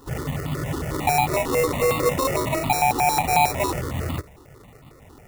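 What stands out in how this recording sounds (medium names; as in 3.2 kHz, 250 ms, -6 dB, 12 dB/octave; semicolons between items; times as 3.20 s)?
aliases and images of a low sample rate 1.6 kHz, jitter 0%; notches that jump at a steady rate 11 Hz 620–1600 Hz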